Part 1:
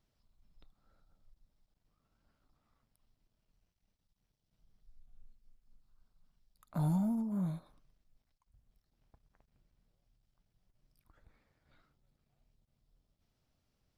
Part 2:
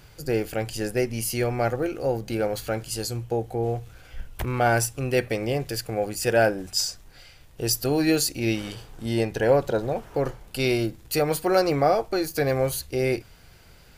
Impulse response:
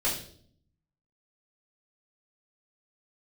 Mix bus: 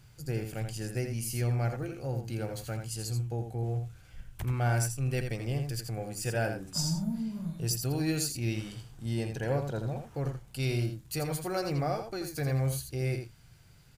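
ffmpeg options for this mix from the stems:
-filter_complex "[0:a]equalizer=f=680:w=0.36:g=-8.5,volume=0.944,asplit=2[s0][s1];[s1]volume=0.299[s2];[1:a]equalizer=f=125:t=o:w=1:g=11,equalizer=f=500:t=o:w=1:g=-4,equalizer=f=8000:t=o:w=1:g=5,volume=0.282,asplit=2[s3][s4];[s4]volume=0.447[s5];[2:a]atrim=start_sample=2205[s6];[s2][s6]afir=irnorm=-1:irlink=0[s7];[s5]aecho=0:1:83:1[s8];[s0][s3][s7][s8]amix=inputs=4:normalize=0"

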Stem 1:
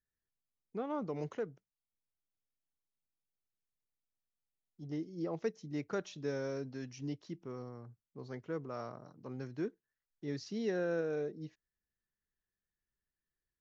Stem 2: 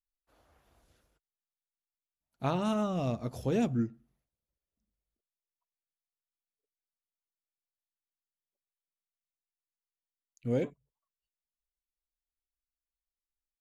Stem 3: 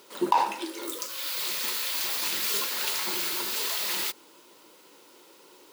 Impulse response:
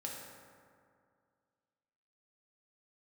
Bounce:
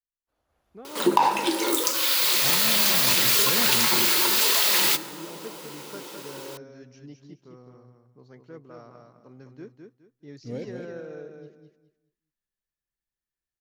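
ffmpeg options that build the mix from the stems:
-filter_complex "[0:a]volume=0.2,asplit=2[s0][s1];[s1]volume=0.562[s2];[1:a]volume=0.2,asplit=2[s3][s4];[s4]volume=0.562[s5];[2:a]acompressor=threshold=0.0251:ratio=2.5,adelay=850,volume=1.33,asplit=2[s6][s7];[s7]volume=0.355[s8];[3:a]atrim=start_sample=2205[s9];[s8][s9]afir=irnorm=-1:irlink=0[s10];[s2][s5]amix=inputs=2:normalize=0,aecho=0:1:208|416|624|832:1|0.26|0.0676|0.0176[s11];[s0][s3][s6][s10][s11]amix=inputs=5:normalize=0,dynaudnorm=f=110:g=9:m=2.82"

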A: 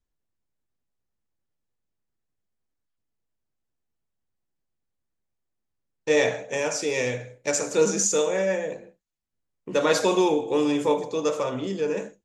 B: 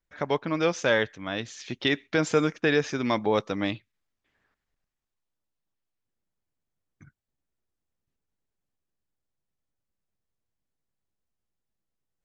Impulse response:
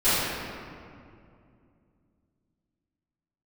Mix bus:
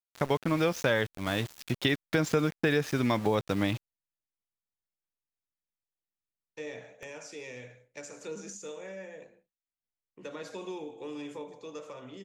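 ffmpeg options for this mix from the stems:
-filter_complex "[0:a]equalizer=f=2200:t=o:w=2:g=5.5,acrossover=split=400[s0][s1];[s1]acompressor=threshold=0.0501:ratio=6[s2];[s0][s2]amix=inputs=2:normalize=0,adelay=500,volume=0.15[s3];[1:a]equalizer=f=110:t=o:w=1.2:g=7.5,aeval=exprs='val(0)*gte(abs(val(0)),0.0158)':c=same,volume=1.19[s4];[s3][s4]amix=inputs=2:normalize=0,acompressor=threshold=0.0631:ratio=3"

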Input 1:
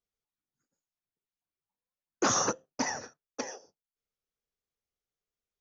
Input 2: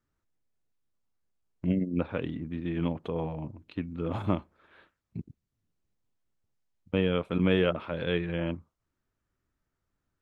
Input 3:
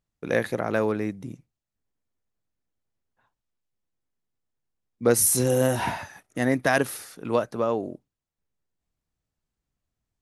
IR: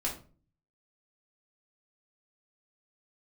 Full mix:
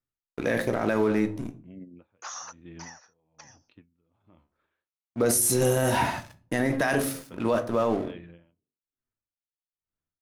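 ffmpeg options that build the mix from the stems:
-filter_complex "[0:a]highpass=f=770:w=0.5412,highpass=f=770:w=1.3066,volume=0.299[s0];[1:a]flanger=delay=7.1:depth=7:regen=60:speed=0.56:shape=triangular,acompressor=threshold=0.0282:ratio=6,aeval=exprs='val(0)*pow(10,-31*(0.5-0.5*cos(2*PI*1.1*n/s))/20)':c=same,volume=0.473[s1];[2:a]bandreject=f=89.82:t=h:w=4,bandreject=f=179.64:t=h:w=4,bandreject=f=269.46:t=h:w=4,bandreject=f=359.28:t=h:w=4,bandreject=f=449.1:t=h:w=4,bandreject=f=538.92:t=h:w=4,bandreject=f=628.74:t=h:w=4,bandreject=f=718.56:t=h:w=4,aeval=exprs='sgn(val(0))*max(abs(val(0))-0.00668,0)':c=same,adelay=150,volume=1.19,asplit=2[s2][s3];[s3]volume=0.398[s4];[3:a]atrim=start_sample=2205[s5];[s4][s5]afir=irnorm=-1:irlink=0[s6];[s0][s1][s2][s6]amix=inputs=4:normalize=0,alimiter=limit=0.2:level=0:latency=1:release=17"

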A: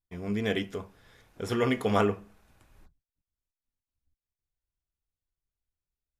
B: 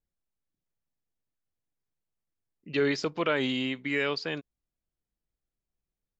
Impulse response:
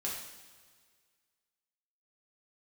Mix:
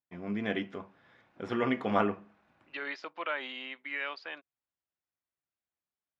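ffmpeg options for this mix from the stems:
-filter_complex "[0:a]volume=0.944[s0];[1:a]highpass=660,volume=0.708[s1];[s0][s1]amix=inputs=2:normalize=0,highpass=190,lowpass=2500,equalizer=f=440:w=6.8:g=-11"

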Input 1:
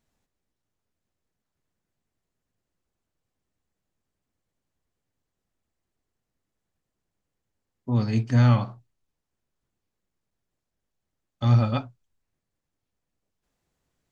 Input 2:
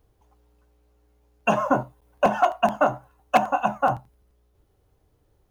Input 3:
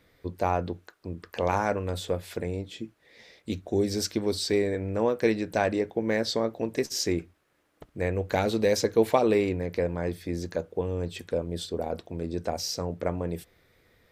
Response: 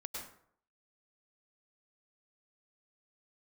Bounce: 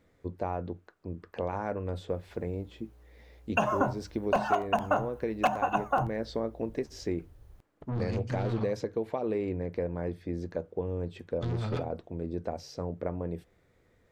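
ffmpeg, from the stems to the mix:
-filter_complex "[0:a]equalizer=f=150:w=1.8:g=6.5,acompressor=threshold=0.141:ratio=2,asoftclip=type=tanh:threshold=0.0376,volume=0.891[s0];[1:a]asubboost=boost=3.5:cutoff=140,adelay=2100,volume=1.33[s1];[2:a]lowpass=f=1100:p=1,alimiter=limit=0.158:level=0:latency=1:release=459,volume=0.794[s2];[s0][s1][s2]amix=inputs=3:normalize=0,acompressor=threshold=0.0447:ratio=2.5"

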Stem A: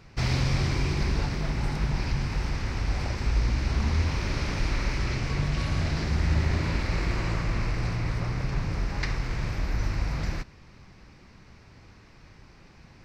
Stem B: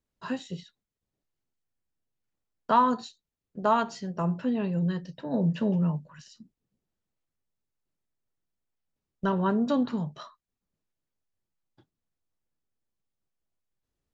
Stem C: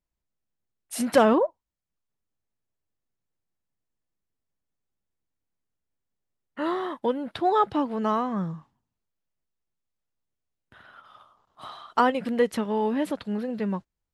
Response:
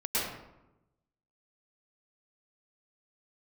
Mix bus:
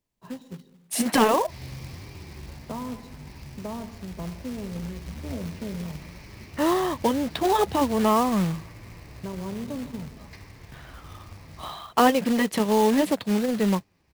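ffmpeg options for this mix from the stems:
-filter_complex "[0:a]flanger=delay=9.8:depth=4.7:regen=-3:speed=1.2:shape=sinusoidal,highpass=44,adelay=1300,volume=0.237,asplit=2[s0][s1];[s1]volume=0.158[s2];[1:a]tiltshelf=f=770:g=8.5,acrossover=split=130|400[s3][s4][s5];[s3]acompressor=threshold=0.00562:ratio=4[s6];[s4]acompressor=threshold=0.0398:ratio=4[s7];[s5]acompressor=threshold=0.0355:ratio=4[s8];[s6][s7][s8]amix=inputs=3:normalize=0,volume=0.376,asplit=2[s9][s10];[s10]volume=0.075[s11];[2:a]highpass=f=87:w=0.5412,highpass=f=87:w=1.3066,acontrast=26,volume=1.06,asplit=2[s12][s13];[s13]apad=whole_len=632458[s14];[s0][s14]sidechaincompress=threshold=0.0631:ratio=8:attack=16:release=103[s15];[3:a]atrim=start_sample=2205[s16];[s2][s11]amix=inputs=2:normalize=0[s17];[s17][s16]afir=irnorm=-1:irlink=0[s18];[s15][s9][s12][s18]amix=inputs=4:normalize=0,afftfilt=real='re*lt(hypot(re,im),1.41)':imag='im*lt(hypot(re,im),1.41)':win_size=1024:overlap=0.75,equalizer=f=1400:t=o:w=0.25:g=-9,acrusher=bits=3:mode=log:mix=0:aa=0.000001"

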